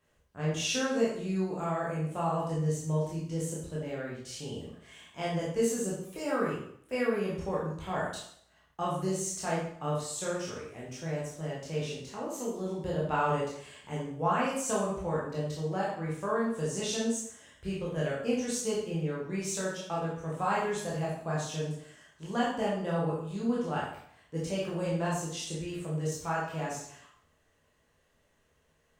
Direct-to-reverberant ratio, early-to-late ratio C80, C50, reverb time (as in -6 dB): -6.5 dB, 5.5 dB, 2.0 dB, 0.65 s